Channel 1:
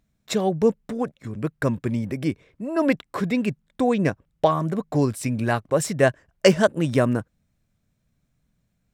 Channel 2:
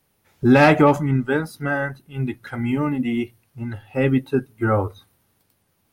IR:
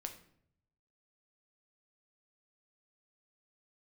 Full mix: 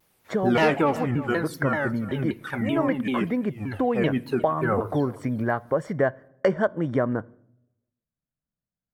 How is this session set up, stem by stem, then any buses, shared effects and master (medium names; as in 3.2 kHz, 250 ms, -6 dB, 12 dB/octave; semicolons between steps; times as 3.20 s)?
+3.0 dB, 0.00 s, send -13 dB, no echo send, Savitzky-Golay filter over 41 samples; gate with hold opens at -46 dBFS
0.0 dB, 0.00 s, send -7 dB, echo send -18.5 dB, vibrato with a chosen wave saw down 5.2 Hz, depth 250 cents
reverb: on, RT60 0.65 s, pre-delay 7 ms
echo: delay 357 ms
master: bass shelf 230 Hz -7 dB; compression 2:1, threshold -24 dBFS, peak gain reduction 10 dB